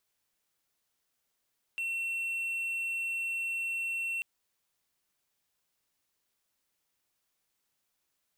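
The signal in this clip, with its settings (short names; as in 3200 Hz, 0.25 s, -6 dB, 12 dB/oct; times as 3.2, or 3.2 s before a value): tone triangle 2710 Hz -29 dBFS 2.44 s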